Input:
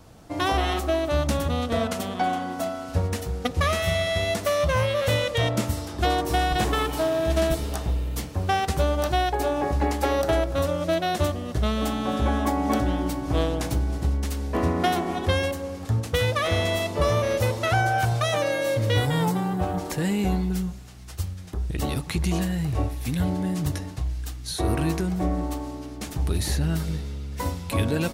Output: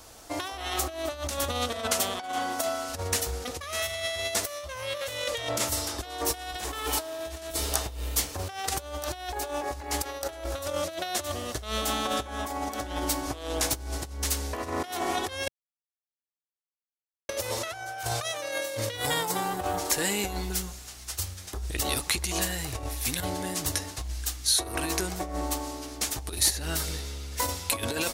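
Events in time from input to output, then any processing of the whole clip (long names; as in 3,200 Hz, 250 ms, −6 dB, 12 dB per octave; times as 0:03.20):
0:15.48–0:17.29: silence
whole clip: parametric band 160 Hz −13.5 dB 1.2 octaves; compressor whose output falls as the input rises −29 dBFS, ratio −0.5; drawn EQ curve 130 Hz 0 dB, 2,800 Hz +7 dB, 6,400 Hz +13 dB; level −5 dB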